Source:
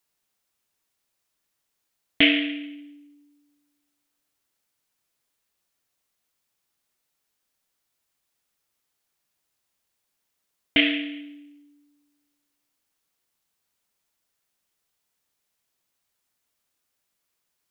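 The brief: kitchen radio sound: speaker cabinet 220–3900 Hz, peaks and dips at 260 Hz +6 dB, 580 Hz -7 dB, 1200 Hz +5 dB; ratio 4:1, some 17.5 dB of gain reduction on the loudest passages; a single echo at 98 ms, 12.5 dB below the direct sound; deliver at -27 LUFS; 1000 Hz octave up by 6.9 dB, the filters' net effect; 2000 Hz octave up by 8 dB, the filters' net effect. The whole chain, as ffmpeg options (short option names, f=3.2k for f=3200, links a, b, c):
-af "equalizer=f=1k:t=o:g=7,equalizer=f=2k:t=o:g=8,acompressor=threshold=-30dB:ratio=4,highpass=220,equalizer=f=260:t=q:w=4:g=6,equalizer=f=580:t=q:w=4:g=-7,equalizer=f=1.2k:t=q:w=4:g=5,lowpass=f=3.9k:w=0.5412,lowpass=f=3.9k:w=1.3066,aecho=1:1:98:0.237,volume=5.5dB"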